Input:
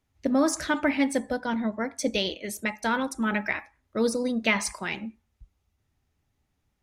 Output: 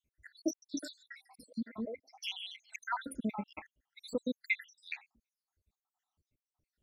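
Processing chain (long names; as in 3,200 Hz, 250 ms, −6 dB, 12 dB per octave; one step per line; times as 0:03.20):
time-frequency cells dropped at random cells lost 84%
0:00.53–0:02.76: three-band delay without the direct sound lows, mids, highs 90/240 ms, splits 400/3,500 Hz
level −3.5 dB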